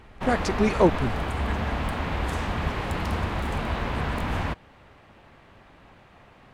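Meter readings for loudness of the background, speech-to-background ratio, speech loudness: −29.0 LKFS, 4.5 dB, −24.5 LKFS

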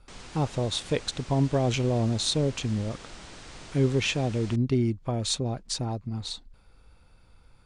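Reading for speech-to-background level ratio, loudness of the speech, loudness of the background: 17.0 dB, −28.0 LKFS, −45.0 LKFS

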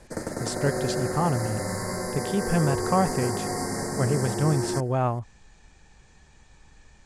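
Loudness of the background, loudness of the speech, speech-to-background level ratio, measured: −29.5 LKFS, −27.5 LKFS, 2.0 dB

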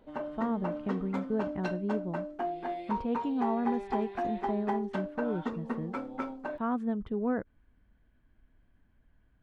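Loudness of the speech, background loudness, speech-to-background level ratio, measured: −34.5 LKFS, −37.0 LKFS, 2.5 dB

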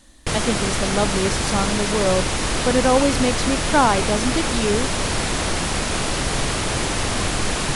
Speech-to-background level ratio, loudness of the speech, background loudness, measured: 0.0 dB, −22.0 LKFS, −22.0 LKFS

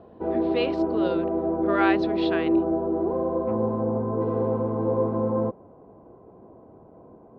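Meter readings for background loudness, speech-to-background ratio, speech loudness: −25.0 LKFS, −5.5 dB, −30.5 LKFS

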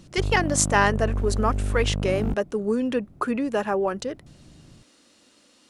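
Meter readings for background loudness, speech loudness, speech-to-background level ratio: −29.0 LKFS, −24.5 LKFS, 4.5 dB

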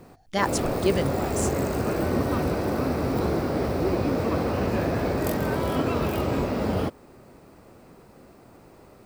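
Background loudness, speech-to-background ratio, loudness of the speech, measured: −26.0 LKFS, −2.5 dB, −28.5 LKFS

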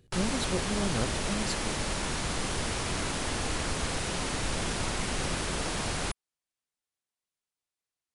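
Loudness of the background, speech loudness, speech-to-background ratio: −31.5 LKFS, −35.0 LKFS, −3.5 dB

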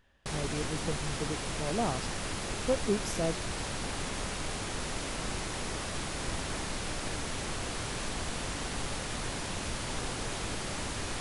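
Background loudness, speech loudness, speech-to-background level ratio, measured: −35.5 LKFS, −35.5 LKFS, 0.0 dB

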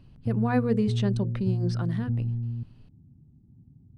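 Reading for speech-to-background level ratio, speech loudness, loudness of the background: 1.5 dB, −29.0 LKFS, −30.5 LKFS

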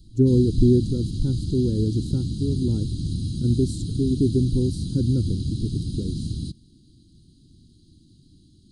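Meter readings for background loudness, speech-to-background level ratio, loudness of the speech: −29.5 LKFS, 5.5 dB, −24.0 LKFS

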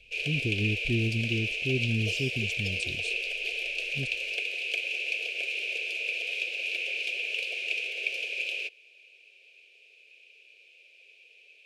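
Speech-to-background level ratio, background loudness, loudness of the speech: −3.0 dB, −30.0 LKFS, −33.0 LKFS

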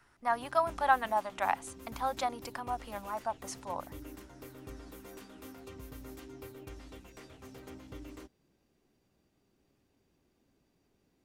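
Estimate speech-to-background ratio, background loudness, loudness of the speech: 15.5 dB, −49.5 LKFS, −34.0 LKFS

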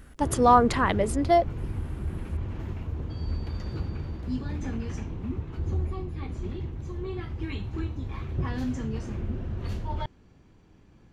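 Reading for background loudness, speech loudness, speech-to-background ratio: −33.5 LKFS, −22.5 LKFS, 11.0 dB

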